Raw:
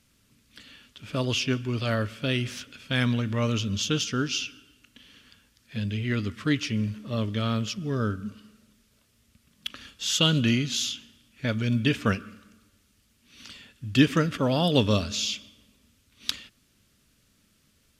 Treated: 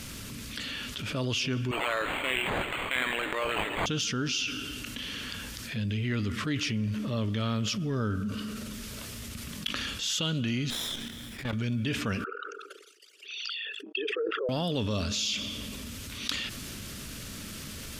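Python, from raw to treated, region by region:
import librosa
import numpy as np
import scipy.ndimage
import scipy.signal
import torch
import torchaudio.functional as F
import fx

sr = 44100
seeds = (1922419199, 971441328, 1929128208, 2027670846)

y = fx.chain(x, sr, fx.brickwall_highpass(low_hz=260.0),
    fx.tilt_eq(slope=4.5),
    fx.resample_linear(factor=8), at=(1.71, 3.86))
y = fx.chain(y, sr, fx.lower_of_two(delay_ms=0.55),
    fx.peak_eq(hz=6000.0, db=-5.5, octaves=0.69),
    fx.level_steps(step_db=14), at=(10.7, 11.53))
y = fx.chain(y, sr, fx.envelope_sharpen(power=3.0),
    fx.steep_highpass(hz=400.0, slope=72),
    fx.sustainer(db_per_s=140.0), at=(12.24, 14.49))
y = fx.rider(y, sr, range_db=5, speed_s=0.5)
y = fx.transient(y, sr, attack_db=-3, sustain_db=3)
y = fx.env_flatten(y, sr, amount_pct=70)
y = F.gain(torch.from_numpy(y), -6.0).numpy()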